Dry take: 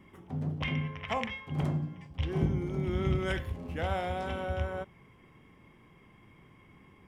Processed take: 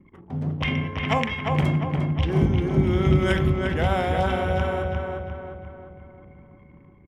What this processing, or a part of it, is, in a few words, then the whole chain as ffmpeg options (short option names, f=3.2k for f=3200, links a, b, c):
voice memo with heavy noise removal: -filter_complex "[0:a]anlmdn=0.000631,dynaudnorm=f=100:g=11:m=3.5dB,asplit=2[a][b];[b]adelay=351,lowpass=f=2.7k:p=1,volume=-3dB,asplit=2[c][d];[d]adelay=351,lowpass=f=2.7k:p=1,volume=0.5,asplit=2[e][f];[f]adelay=351,lowpass=f=2.7k:p=1,volume=0.5,asplit=2[g][h];[h]adelay=351,lowpass=f=2.7k:p=1,volume=0.5,asplit=2[i][j];[j]adelay=351,lowpass=f=2.7k:p=1,volume=0.5,asplit=2[k][l];[l]adelay=351,lowpass=f=2.7k:p=1,volume=0.5,asplit=2[m][n];[n]adelay=351,lowpass=f=2.7k:p=1,volume=0.5[o];[a][c][e][g][i][k][m][o]amix=inputs=8:normalize=0,volume=5dB"